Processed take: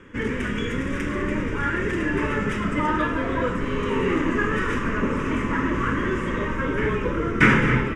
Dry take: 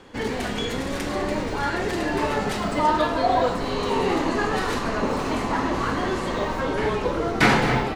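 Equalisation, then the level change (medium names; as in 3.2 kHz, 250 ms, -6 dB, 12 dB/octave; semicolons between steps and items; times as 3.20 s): distance through air 77 m; static phaser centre 1.8 kHz, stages 4; +4.0 dB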